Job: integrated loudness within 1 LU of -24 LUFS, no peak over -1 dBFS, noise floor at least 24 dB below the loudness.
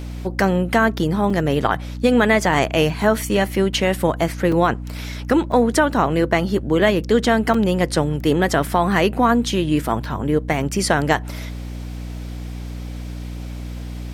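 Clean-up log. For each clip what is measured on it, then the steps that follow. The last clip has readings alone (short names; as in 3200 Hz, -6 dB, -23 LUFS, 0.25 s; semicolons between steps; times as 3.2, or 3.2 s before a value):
dropouts 4; longest dropout 4.0 ms; hum 60 Hz; harmonics up to 300 Hz; hum level -27 dBFS; loudness -19.0 LUFS; peak -3.0 dBFS; loudness target -24.0 LUFS
-> interpolate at 1.3/4.52/5.52/7.54, 4 ms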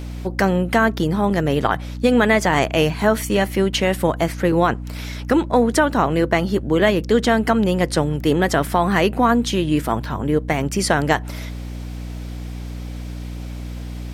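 dropouts 0; hum 60 Hz; harmonics up to 300 Hz; hum level -27 dBFS
-> notches 60/120/180/240/300 Hz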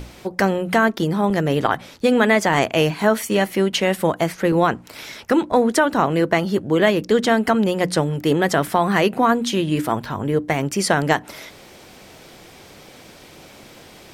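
hum none; loudness -19.0 LUFS; peak -3.0 dBFS; loudness target -24.0 LUFS
-> gain -5 dB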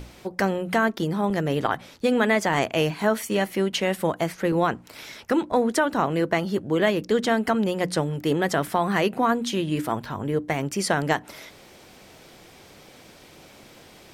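loudness -24.0 LUFS; peak -8.0 dBFS; noise floor -50 dBFS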